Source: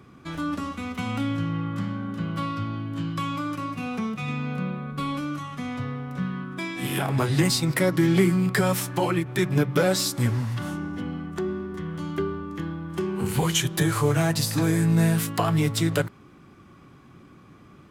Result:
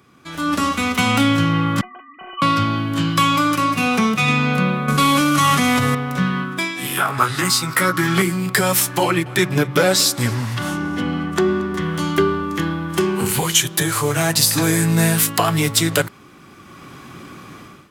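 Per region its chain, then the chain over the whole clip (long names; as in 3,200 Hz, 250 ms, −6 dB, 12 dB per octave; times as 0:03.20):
0:01.81–0:02.42: three sine waves on the formant tracks + parametric band 320 Hz −11 dB 1.1 octaves + stiff-string resonator 360 Hz, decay 0.23 s, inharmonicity 0.008
0:04.88–0:05.95: variable-slope delta modulation 64 kbit/s + envelope flattener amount 100%
0:06.97–0:08.22: parametric band 1,300 Hz +14.5 dB 0.6 octaves + double-tracking delay 17 ms −5 dB
0:09.03–0:11.82: high-shelf EQ 7,300 Hz −6.5 dB + single-tap delay 228 ms −22.5 dB
whole clip: spectral tilt +2 dB per octave; automatic gain control gain up to 16.5 dB; level −1 dB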